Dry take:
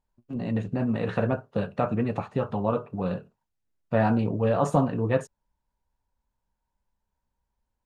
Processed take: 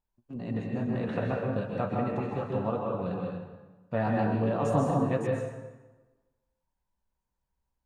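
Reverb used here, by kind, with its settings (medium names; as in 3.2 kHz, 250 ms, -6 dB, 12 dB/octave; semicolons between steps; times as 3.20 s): plate-style reverb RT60 1.2 s, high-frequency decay 0.75×, pre-delay 115 ms, DRR -1 dB; trim -6.5 dB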